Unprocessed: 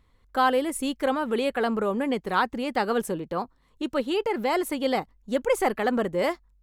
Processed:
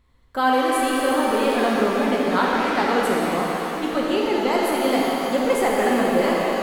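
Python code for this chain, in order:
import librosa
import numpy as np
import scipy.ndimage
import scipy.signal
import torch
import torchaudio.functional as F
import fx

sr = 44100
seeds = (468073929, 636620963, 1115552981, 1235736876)

y = fx.block_float(x, sr, bits=7, at=(5.68, 6.14))
y = fx.rev_shimmer(y, sr, seeds[0], rt60_s=3.8, semitones=7, shimmer_db=-8, drr_db=-4.0)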